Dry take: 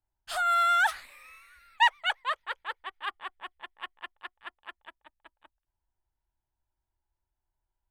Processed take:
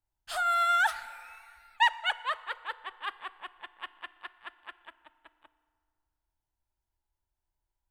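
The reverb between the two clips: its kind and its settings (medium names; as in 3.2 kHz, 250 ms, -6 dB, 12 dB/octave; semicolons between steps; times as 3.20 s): FDN reverb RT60 2 s, low-frequency decay 1×, high-frequency decay 0.65×, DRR 14.5 dB; trim -1.5 dB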